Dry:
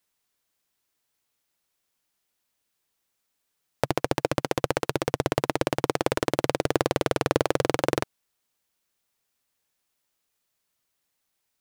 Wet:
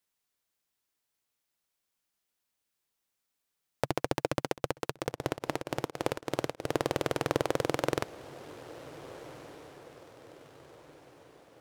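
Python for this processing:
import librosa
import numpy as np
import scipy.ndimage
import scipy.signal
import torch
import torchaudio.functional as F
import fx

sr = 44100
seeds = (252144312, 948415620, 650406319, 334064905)

y = fx.echo_diffused(x, sr, ms=1563, feedback_pct=46, wet_db=-16)
y = fx.tremolo_abs(y, sr, hz=fx.line((4.46, 6.0), (6.81, 2.5)), at=(4.46, 6.81), fade=0.02)
y = y * librosa.db_to_amplitude(-5.5)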